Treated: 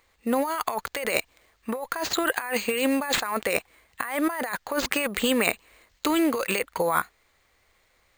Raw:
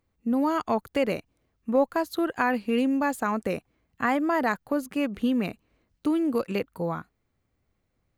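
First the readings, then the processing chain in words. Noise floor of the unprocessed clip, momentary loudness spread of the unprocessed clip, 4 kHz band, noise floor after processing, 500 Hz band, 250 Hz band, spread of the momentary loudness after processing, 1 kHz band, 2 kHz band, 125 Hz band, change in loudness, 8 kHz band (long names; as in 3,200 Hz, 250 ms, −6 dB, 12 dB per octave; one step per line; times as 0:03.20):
−76 dBFS, 8 LU, +11.5 dB, −66 dBFS, 0.0 dB, −2.5 dB, 8 LU, 0.0 dB, +4.5 dB, −5.0 dB, +1.0 dB, +15.0 dB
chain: octave-band graphic EQ 125/250/500/1,000/2,000/4,000/8,000 Hz −9/−6/+5/+7/+11/+11/+11 dB
compressor whose output falls as the input rises −26 dBFS, ratio −1
bad sample-rate conversion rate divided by 4×, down none, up hold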